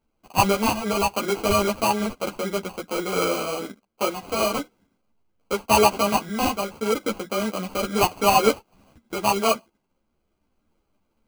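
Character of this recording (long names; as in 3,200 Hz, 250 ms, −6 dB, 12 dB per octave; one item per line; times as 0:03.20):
sample-and-hold tremolo
aliases and images of a low sample rate 1,800 Hz, jitter 0%
a shimmering, thickened sound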